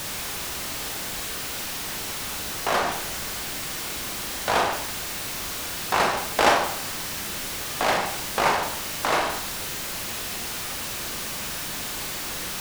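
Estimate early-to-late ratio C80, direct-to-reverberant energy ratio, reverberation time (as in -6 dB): 10.0 dB, 3.0 dB, 0.60 s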